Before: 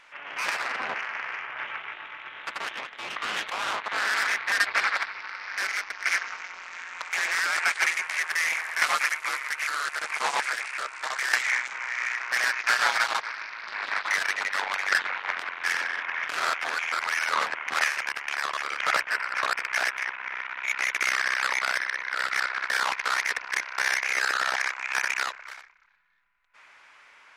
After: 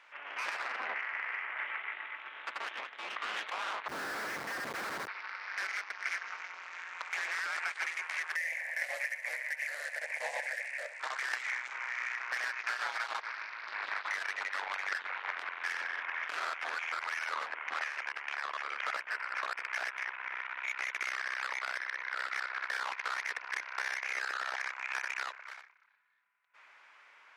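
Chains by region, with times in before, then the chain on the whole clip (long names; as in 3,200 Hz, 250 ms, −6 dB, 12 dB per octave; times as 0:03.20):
0:00.86–0:02.16: band-pass filter 120–5,000 Hz + parametric band 2,000 Hz +8 dB 0.31 octaves
0:03.88–0:05.08: head-to-tape spacing loss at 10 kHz 32 dB + comparator with hysteresis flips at −39 dBFS
0:08.36–0:11.00: drawn EQ curve 110 Hz 0 dB, 390 Hz −14 dB, 560 Hz +9 dB, 1,300 Hz −22 dB, 1,800 Hz +5 dB, 3,300 Hz −9 dB, 7,200 Hz −1 dB, 13,000 Hz +5 dB + flutter between parallel walls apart 11.3 metres, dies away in 0.31 s
0:17.46–0:18.82: high-pass filter 180 Hz + high-shelf EQ 8,200 Hz −11.5 dB + mains-hum notches 60/120/180/240/300/360/420/480 Hz
whole clip: Bessel high-pass filter 380 Hz, order 2; high-shelf EQ 5,000 Hz −9.5 dB; downward compressor, threshold −28 dBFS; level −4 dB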